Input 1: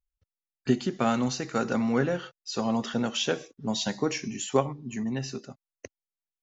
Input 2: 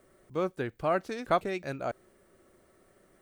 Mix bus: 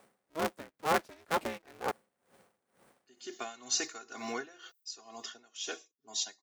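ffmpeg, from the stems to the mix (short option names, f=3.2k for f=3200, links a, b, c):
-filter_complex "[0:a]aemphasis=mode=production:type=riaa,aecho=1:1:2.8:0.91,adelay=2400,volume=-3dB,afade=t=in:st=3.16:d=0.4:silence=0.223872,afade=t=out:st=4.86:d=0.33:silence=0.354813[a];[1:a]aeval=exprs='val(0)*sgn(sin(2*PI*160*n/s))':c=same,volume=1.5dB[b];[a][b]amix=inputs=2:normalize=0,highpass=f=270:p=1,aeval=exprs='val(0)*pow(10,-21*(0.5-0.5*cos(2*PI*2.1*n/s))/20)':c=same"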